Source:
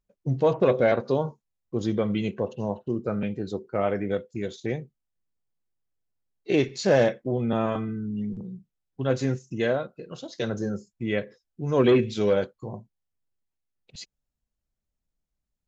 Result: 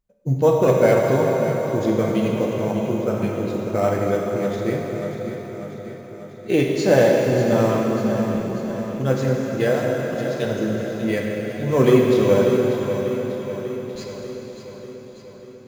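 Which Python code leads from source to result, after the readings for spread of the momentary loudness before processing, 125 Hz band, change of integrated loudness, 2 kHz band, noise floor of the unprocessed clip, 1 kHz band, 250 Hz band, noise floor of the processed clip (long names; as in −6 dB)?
18 LU, +7.0 dB, +6.0 dB, +5.5 dB, −84 dBFS, +6.5 dB, +6.5 dB, −40 dBFS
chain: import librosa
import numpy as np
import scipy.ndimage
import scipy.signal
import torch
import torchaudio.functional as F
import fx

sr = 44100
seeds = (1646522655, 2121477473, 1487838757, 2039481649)

p1 = fx.sample_hold(x, sr, seeds[0], rate_hz=6600.0, jitter_pct=0)
p2 = x + (p1 * librosa.db_to_amplitude(-8.5))
p3 = fx.echo_feedback(p2, sr, ms=592, feedback_pct=60, wet_db=-10)
y = fx.rev_plate(p3, sr, seeds[1], rt60_s=4.1, hf_ratio=0.9, predelay_ms=0, drr_db=-1.0)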